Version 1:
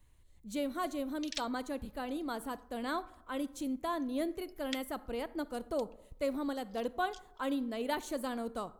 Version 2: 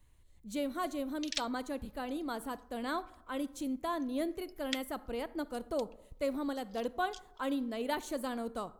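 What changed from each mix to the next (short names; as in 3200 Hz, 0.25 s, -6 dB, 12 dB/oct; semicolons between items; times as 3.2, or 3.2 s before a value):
background +3.5 dB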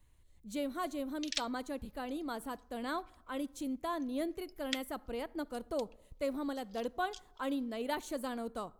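speech: send -6.5 dB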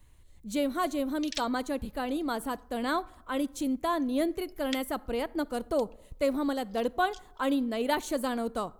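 speech +8.0 dB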